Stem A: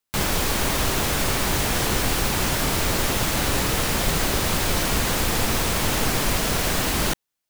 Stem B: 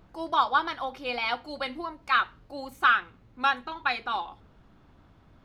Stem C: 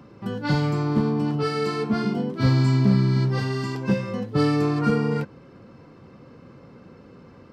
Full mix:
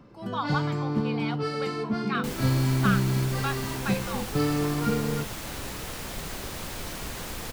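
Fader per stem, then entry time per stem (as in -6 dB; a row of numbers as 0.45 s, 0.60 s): -13.5 dB, -8.0 dB, -5.0 dB; 2.10 s, 0.00 s, 0.00 s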